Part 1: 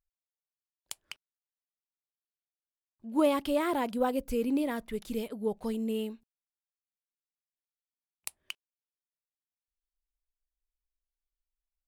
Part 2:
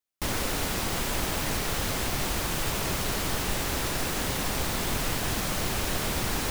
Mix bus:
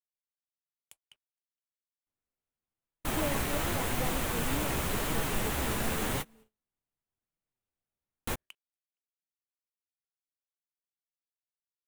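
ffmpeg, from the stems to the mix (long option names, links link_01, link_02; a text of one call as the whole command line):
ffmpeg -i stem1.wav -i stem2.wav -filter_complex "[0:a]agate=range=-33dB:threshold=-54dB:ratio=3:detection=peak,acontrast=28,volume=-15dB,asplit=3[link_01][link_02][link_03];[link_02]volume=-21.5dB[link_04];[1:a]flanger=delay=6:depth=9.9:regen=-21:speed=0.9:shape=sinusoidal,adelay=1850,volume=1.5dB[link_05];[link_03]apad=whole_len=368535[link_06];[link_05][link_06]sidechaingate=range=-34dB:threshold=-58dB:ratio=16:detection=peak[link_07];[link_04]aecho=0:1:466:1[link_08];[link_01][link_07][link_08]amix=inputs=3:normalize=0,agate=range=-31dB:threshold=-56dB:ratio=16:detection=peak,equalizer=frequency=5000:width_type=o:width=0.83:gain=-8" out.wav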